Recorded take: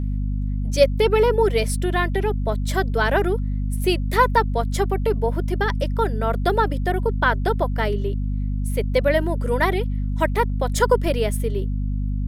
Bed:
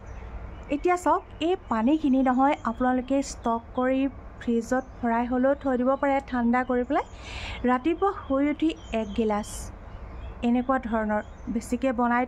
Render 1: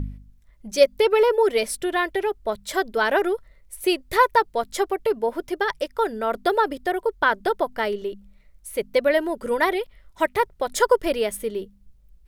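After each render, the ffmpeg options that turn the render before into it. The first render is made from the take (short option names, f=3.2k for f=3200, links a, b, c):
-af "bandreject=f=50:t=h:w=4,bandreject=f=100:t=h:w=4,bandreject=f=150:t=h:w=4,bandreject=f=200:t=h:w=4,bandreject=f=250:t=h:w=4"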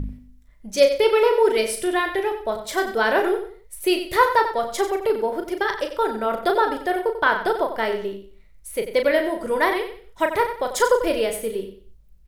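-filter_complex "[0:a]asplit=2[a][b];[b]adelay=36,volume=-6.5dB[c];[a][c]amix=inputs=2:normalize=0,asplit=2[d][e];[e]aecho=0:1:92|184|276:0.316|0.0917|0.0266[f];[d][f]amix=inputs=2:normalize=0"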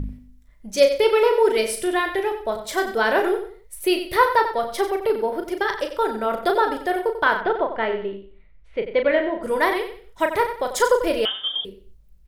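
-filter_complex "[0:a]asettb=1/sr,asplit=3[a][b][c];[a]atrim=end=3.864[d];[b]atrim=start=3.86:end=5.43,asetpts=PTS-STARTPTS,afade=t=in:d=0.004:c=qsin,afade=t=out:st=1.566:d=0.004:c=qsin,equalizer=f=7.1k:t=o:w=0.23:g=-15[e];[c]atrim=start=5.426[f];[d][e]acrossfade=d=0.004:c1=hsin:c2=qsin[g];[g][f]acrossfade=d=0.004:c1=qsin:c2=hsin,asplit=3[h][i][j];[h]afade=t=out:st=7.4:d=0.02[k];[i]lowpass=f=3.2k:w=0.5412,lowpass=f=3.2k:w=1.3066,afade=t=in:st=7.4:d=0.02,afade=t=out:st=9.42:d=0.02[l];[j]afade=t=in:st=9.42:d=0.02[m];[k][l][m]amix=inputs=3:normalize=0,asettb=1/sr,asplit=3[n][o][p];[n]atrim=end=11.254[q];[o]atrim=start=11.25:end=11.65,asetpts=PTS-STARTPTS,afade=t=in:d=0.004:c=qsin,afade=t=out:st=0.396:d=0.004:c=qsin,lowpass=f=3.1k:t=q:w=0.5098,lowpass=f=3.1k:t=q:w=0.6013,lowpass=f=3.1k:t=q:w=0.9,lowpass=f=3.1k:t=q:w=2.563,afreqshift=-3600[r];[p]atrim=start=11.646[s];[q][r]acrossfade=d=0.004:c1=hsin:c2=qsin[t];[t][s]acrossfade=d=0.004:c1=qsin:c2=hsin"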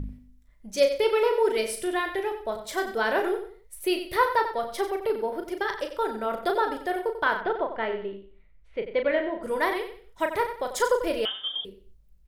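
-af "volume=-5.5dB"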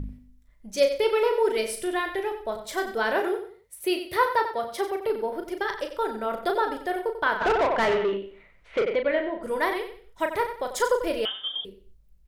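-filter_complex "[0:a]asettb=1/sr,asplit=3[a][b][c];[a]atrim=end=3.144[d];[b]atrim=start=3.14:end=5.08,asetpts=PTS-STARTPTS,afade=t=in:d=0.004:c=qsin,afade=t=out:st=1.936:d=0.004:c=qsin,highpass=f=63:w=0.5412,highpass=f=63:w=1.3066[e];[c]atrim=start=5.076[f];[d][e]acrossfade=d=0.004:c1=hsin:c2=qsin[g];[g][f]acrossfade=d=0.004:c1=qsin:c2=hsin,asplit=3[h][i][j];[h]afade=t=out:st=7.4:d=0.02[k];[i]asplit=2[l][m];[m]highpass=f=720:p=1,volume=25dB,asoftclip=type=tanh:threshold=-15dB[n];[l][n]amix=inputs=2:normalize=0,lowpass=f=2.5k:p=1,volume=-6dB,afade=t=in:st=7.4:d=0.02,afade=t=out:st=8.94:d=0.02[o];[j]afade=t=in:st=8.94:d=0.02[p];[k][o][p]amix=inputs=3:normalize=0"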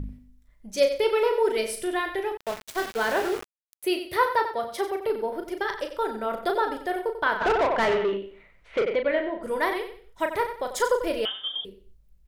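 -filter_complex "[0:a]asettb=1/sr,asplit=3[a][b][c];[a]atrim=end=2.374[d];[b]atrim=start=2.37:end=3.83,asetpts=PTS-STARTPTS,afade=t=in:d=0.004:c=qsin,afade=t=out:st=1.456:d=0.004:c=qsin,aeval=exprs='val(0)*gte(abs(val(0)),0.0282)':c=same[e];[c]atrim=start=3.826[f];[d][e]acrossfade=d=0.004:c1=hsin:c2=qsin[g];[g][f]acrossfade=d=0.004:c1=qsin:c2=hsin"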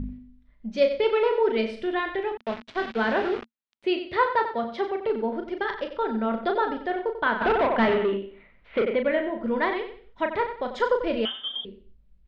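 -af "lowpass=f=3.9k:w=0.5412,lowpass=f=3.9k:w=1.3066,equalizer=f=230:t=o:w=0.31:g=13.5"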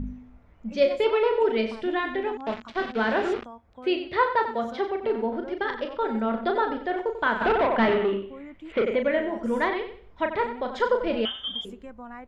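-filter_complex "[1:a]volume=-18dB[a];[0:a][a]amix=inputs=2:normalize=0"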